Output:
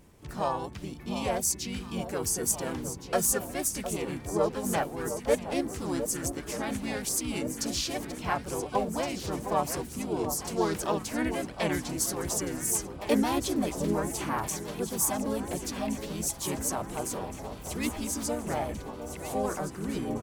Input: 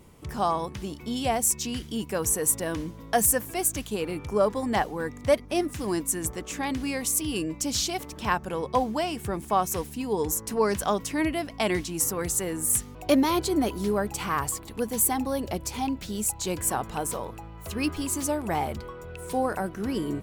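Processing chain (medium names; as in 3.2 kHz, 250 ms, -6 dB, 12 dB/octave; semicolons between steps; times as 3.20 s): harmony voices -4 st 0 dB, +7 st -16 dB; echo whose repeats swap between lows and highs 709 ms, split 1.2 kHz, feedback 79%, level -9.5 dB; trim -7 dB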